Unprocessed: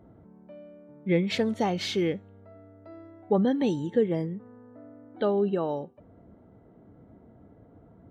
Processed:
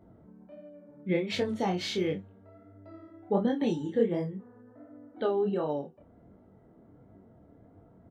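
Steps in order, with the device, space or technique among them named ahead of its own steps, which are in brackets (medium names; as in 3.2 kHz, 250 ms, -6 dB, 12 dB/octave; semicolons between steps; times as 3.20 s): double-tracked vocal (doubling 31 ms -11 dB; chorus 1.4 Hz, delay 20 ms, depth 7.8 ms)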